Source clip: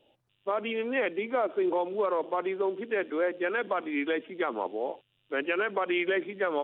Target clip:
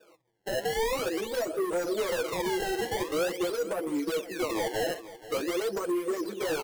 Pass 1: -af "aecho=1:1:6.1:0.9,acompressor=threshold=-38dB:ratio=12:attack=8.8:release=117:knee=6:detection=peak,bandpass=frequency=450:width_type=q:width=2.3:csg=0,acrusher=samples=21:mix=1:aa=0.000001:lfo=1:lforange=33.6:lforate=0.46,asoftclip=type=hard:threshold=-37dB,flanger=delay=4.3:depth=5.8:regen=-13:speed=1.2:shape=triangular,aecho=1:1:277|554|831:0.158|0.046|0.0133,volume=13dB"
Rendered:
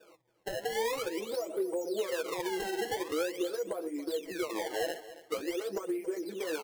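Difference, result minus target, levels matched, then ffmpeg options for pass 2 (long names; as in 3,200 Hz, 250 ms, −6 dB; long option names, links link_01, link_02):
downward compressor: peak gain reduction +9 dB; echo 204 ms early
-af "aecho=1:1:6.1:0.9,acompressor=threshold=-28dB:ratio=12:attack=8.8:release=117:knee=6:detection=peak,bandpass=frequency=450:width_type=q:width=2.3:csg=0,acrusher=samples=21:mix=1:aa=0.000001:lfo=1:lforange=33.6:lforate=0.46,asoftclip=type=hard:threshold=-37dB,flanger=delay=4.3:depth=5.8:regen=-13:speed=1.2:shape=triangular,aecho=1:1:481|962|1443:0.158|0.046|0.0133,volume=13dB"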